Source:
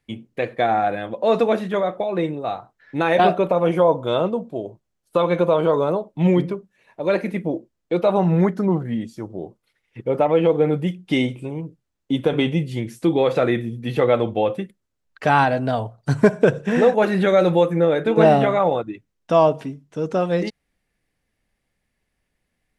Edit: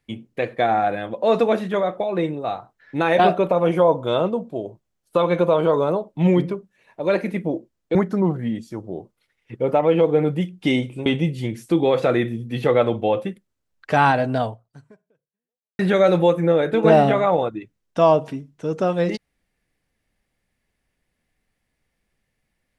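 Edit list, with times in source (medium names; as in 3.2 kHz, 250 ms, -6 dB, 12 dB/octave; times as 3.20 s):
7.95–8.41 s: delete
11.52–12.39 s: delete
15.77–17.12 s: fade out exponential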